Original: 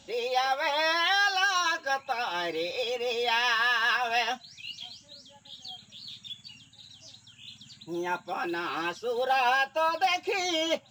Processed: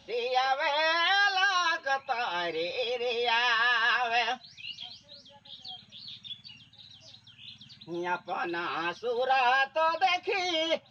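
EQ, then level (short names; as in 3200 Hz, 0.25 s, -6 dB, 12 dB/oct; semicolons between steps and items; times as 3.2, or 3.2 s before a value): polynomial smoothing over 15 samples; bell 290 Hz -6 dB 0.37 oct; 0.0 dB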